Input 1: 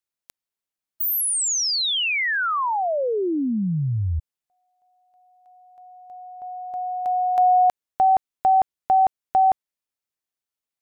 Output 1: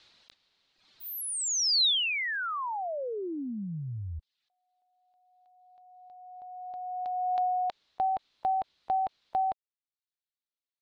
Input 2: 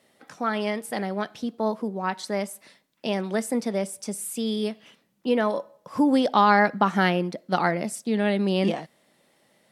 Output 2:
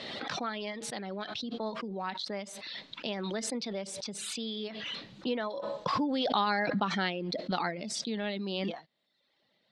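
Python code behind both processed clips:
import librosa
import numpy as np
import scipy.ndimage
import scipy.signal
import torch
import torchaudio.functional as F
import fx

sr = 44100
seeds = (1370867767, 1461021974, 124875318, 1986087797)

y = fx.dereverb_blind(x, sr, rt60_s=0.73)
y = fx.ladder_lowpass(y, sr, hz=4500.0, resonance_pct=60)
y = fx.pre_swell(y, sr, db_per_s=21.0)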